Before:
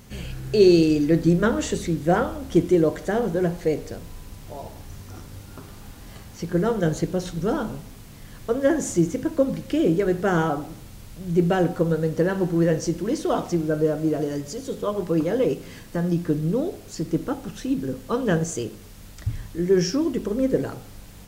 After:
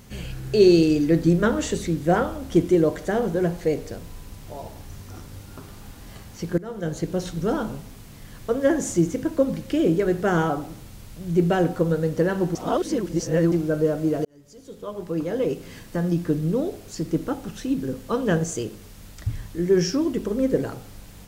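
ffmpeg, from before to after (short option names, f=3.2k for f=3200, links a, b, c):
-filter_complex "[0:a]asplit=5[a][b][c][d][e];[a]atrim=end=6.58,asetpts=PTS-STARTPTS,afade=t=out:st=6.576:d=0.004:c=hsin:silence=0.105925[f];[b]atrim=start=6.58:end=12.552,asetpts=PTS-STARTPTS,afade=t=in:d=0.62:silence=0.105925[g];[c]atrim=start=12.548:end=13.522,asetpts=PTS-STARTPTS,areverse[h];[d]atrim=start=13.518:end=14.25,asetpts=PTS-STARTPTS,afade=t=out:st=0.728:d=0.004:c=hsin[i];[e]atrim=start=14.25,asetpts=PTS-STARTPTS,afade=t=in:d=1.57[j];[f][g]concat=n=2:v=0:a=1[k];[k][h]acrossfade=d=0.004:c1=hsin:c2=hsin[l];[i][j]concat=n=2:v=0:a=1[m];[l][m]acrossfade=d=0.004:c1=hsin:c2=hsin"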